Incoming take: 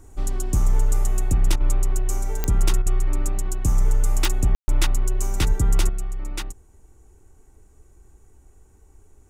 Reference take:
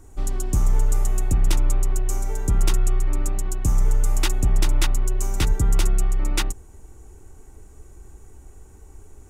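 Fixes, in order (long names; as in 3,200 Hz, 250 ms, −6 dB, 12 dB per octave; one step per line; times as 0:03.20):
click removal
ambience match 0:04.55–0:04.68
repair the gap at 0:01.56/0:02.82, 41 ms
level correction +7.5 dB, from 0:05.89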